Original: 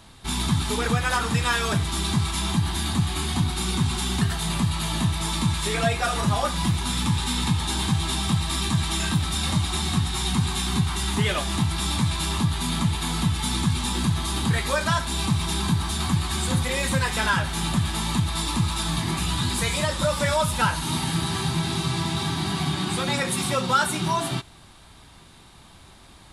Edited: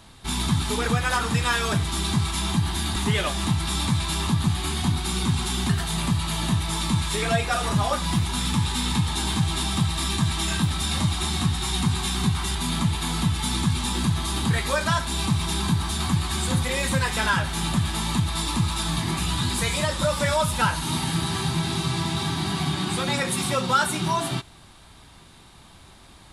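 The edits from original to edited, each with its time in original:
11.07–12.55 s: move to 2.96 s

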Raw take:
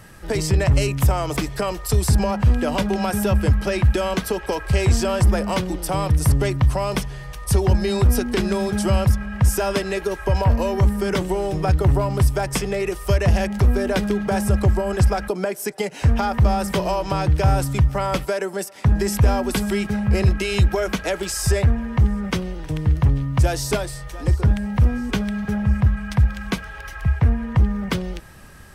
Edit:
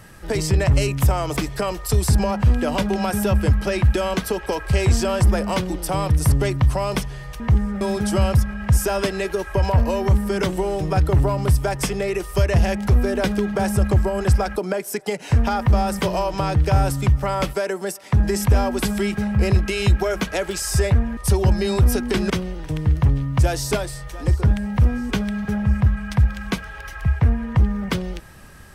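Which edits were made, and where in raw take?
7.40–8.53 s: swap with 21.89–22.30 s

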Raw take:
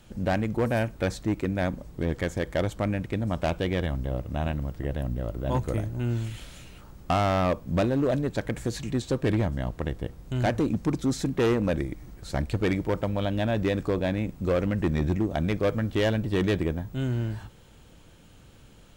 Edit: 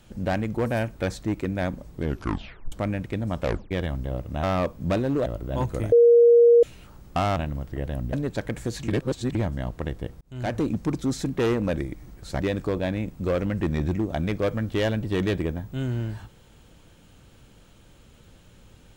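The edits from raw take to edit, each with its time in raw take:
2.02 s: tape stop 0.70 s
3.42 s: tape stop 0.29 s
4.43–5.20 s: swap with 7.30–8.13 s
5.86–6.57 s: bleep 472 Hz -11 dBFS
8.88–9.35 s: reverse
10.21–10.60 s: fade in
12.40–13.61 s: delete

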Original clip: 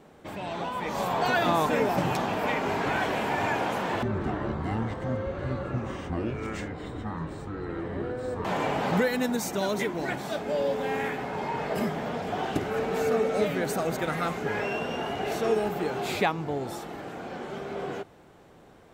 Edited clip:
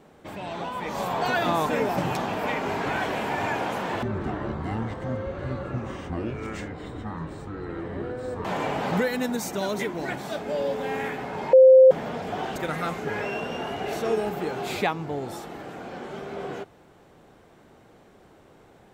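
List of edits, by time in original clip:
11.53–11.91 s: bleep 522 Hz -8.5 dBFS
12.56–13.95 s: delete

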